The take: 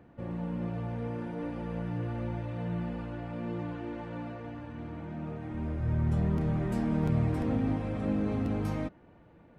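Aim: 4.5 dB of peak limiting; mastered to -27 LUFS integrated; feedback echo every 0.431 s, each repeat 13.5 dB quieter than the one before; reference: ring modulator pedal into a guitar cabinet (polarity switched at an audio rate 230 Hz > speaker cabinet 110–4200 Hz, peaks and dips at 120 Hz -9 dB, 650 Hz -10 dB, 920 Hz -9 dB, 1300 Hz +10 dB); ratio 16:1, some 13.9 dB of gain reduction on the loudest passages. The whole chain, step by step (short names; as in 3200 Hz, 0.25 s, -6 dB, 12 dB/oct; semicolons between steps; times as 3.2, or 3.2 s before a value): compressor 16:1, threshold -37 dBFS; limiter -35 dBFS; feedback echo 0.431 s, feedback 21%, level -13.5 dB; polarity switched at an audio rate 230 Hz; speaker cabinet 110–4200 Hz, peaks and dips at 120 Hz -9 dB, 650 Hz -10 dB, 920 Hz -9 dB, 1300 Hz +10 dB; gain +17.5 dB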